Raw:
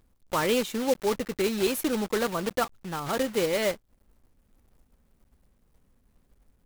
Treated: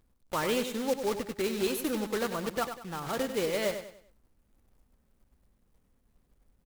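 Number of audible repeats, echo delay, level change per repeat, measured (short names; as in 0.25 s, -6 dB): 3, 97 ms, -9.0 dB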